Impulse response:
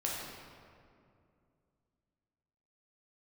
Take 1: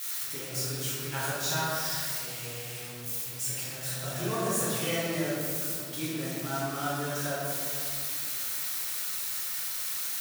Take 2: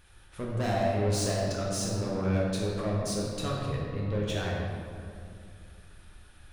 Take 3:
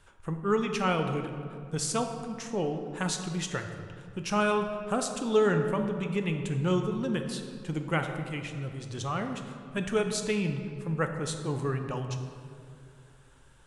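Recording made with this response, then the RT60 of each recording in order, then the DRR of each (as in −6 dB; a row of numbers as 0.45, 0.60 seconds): 2; 2.4, 2.4, 2.5 seconds; −9.0, −4.5, 5.0 decibels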